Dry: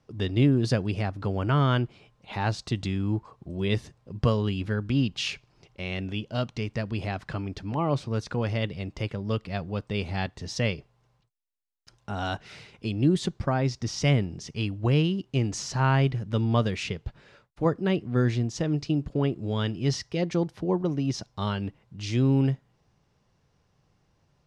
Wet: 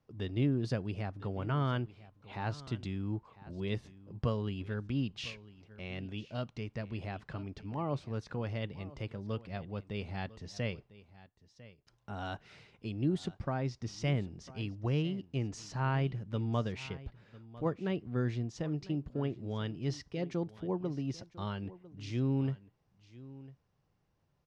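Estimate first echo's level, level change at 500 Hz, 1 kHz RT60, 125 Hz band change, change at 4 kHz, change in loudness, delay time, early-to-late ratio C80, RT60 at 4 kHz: -18.5 dB, -9.0 dB, no reverb, -9.0 dB, -11.5 dB, -9.0 dB, 1000 ms, no reverb, no reverb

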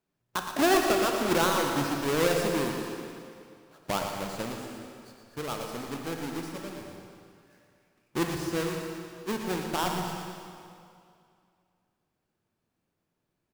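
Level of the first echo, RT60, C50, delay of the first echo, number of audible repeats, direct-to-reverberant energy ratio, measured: -9.0 dB, 2.4 s, 2.5 dB, 117 ms, 2, 1.5 dB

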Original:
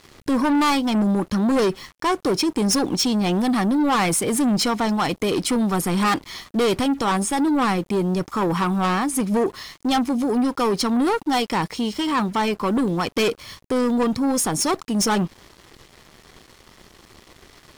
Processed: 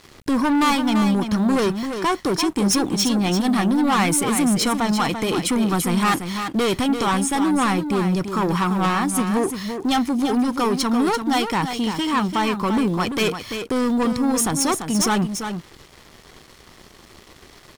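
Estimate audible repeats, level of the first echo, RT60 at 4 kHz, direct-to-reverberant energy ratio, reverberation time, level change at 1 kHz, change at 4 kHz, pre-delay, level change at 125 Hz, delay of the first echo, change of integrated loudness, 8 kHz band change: 1, -8.0 dB, no reverb, no reverb, no reverb, +1.0 dB, +1.0 dB, no reverb, +1.5 dB, 340 ms, +1.0 dB, +2.0 dB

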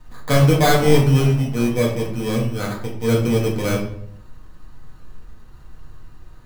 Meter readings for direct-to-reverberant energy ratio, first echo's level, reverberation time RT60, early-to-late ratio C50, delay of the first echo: -4.5 dB, no echo, 0.65 s, 5.5 dB, no echo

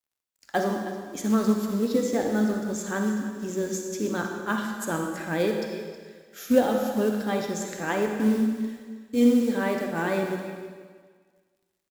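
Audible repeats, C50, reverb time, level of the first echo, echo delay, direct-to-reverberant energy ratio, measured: 1, 3.0 dB, 1.6 s, -14.0 dB, 318 ms, 2.5 dB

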